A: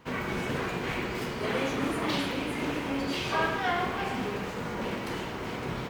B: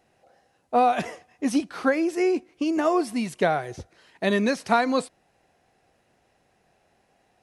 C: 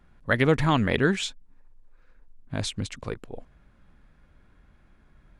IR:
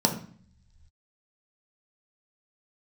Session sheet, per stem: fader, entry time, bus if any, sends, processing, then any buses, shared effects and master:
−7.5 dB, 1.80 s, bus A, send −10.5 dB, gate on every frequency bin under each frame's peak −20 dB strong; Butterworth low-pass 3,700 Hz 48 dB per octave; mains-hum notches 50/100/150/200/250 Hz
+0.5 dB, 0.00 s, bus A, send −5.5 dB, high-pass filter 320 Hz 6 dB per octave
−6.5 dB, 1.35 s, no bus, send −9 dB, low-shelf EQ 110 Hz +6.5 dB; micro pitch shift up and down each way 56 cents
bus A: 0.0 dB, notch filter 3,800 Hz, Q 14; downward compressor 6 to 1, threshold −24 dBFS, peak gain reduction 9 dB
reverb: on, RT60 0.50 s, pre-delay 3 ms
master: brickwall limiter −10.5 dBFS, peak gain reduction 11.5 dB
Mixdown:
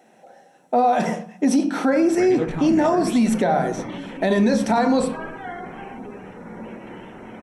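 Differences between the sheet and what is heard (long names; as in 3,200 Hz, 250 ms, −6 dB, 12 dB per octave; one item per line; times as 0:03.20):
stem B +0.5 dB → +6.5 dB
stem C: entry 1.35 s → 1.90 s
reverb return −8.0 dB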